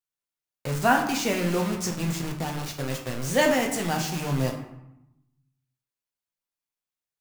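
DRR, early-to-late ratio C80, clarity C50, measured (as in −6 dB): 1.0 dB, 9.5 dB, 7.5 dB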